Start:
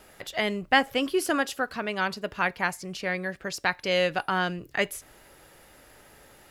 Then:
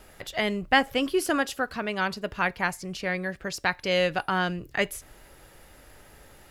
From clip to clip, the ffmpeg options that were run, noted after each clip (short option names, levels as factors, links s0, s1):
-af "lowshelf=f=87:g=11"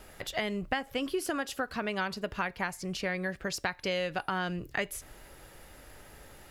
-af "acompressor=threshold=0.0398:ratio=8"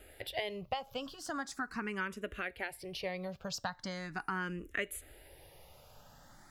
-filter_complex "[0:a]asplit=2[s0][s1];[s1]afreqshift=0.4[s2];[s0][s2]amix=inputs=2:normalize=1,volume=0.75"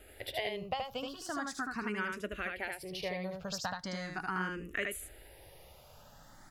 -af "aecho=1:1:76:0.668"